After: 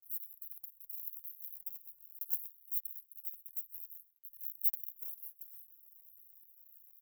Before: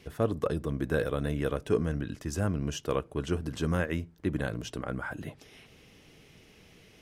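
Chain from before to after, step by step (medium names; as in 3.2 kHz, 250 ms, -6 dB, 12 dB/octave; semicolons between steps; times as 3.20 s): 4.45–4.89 s: dead-time distortion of 0.051 ms; gate with hold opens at -47 dBFS; waveshaping leveller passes 5; 3.41–3.95 s: harmonic-percussive split harmonic -16 dB; inverse Chebyshev band-stop 130–5000 Hz, stop band 70 dB; differentiator; delay 129 ms -23 dB; trim +4 dB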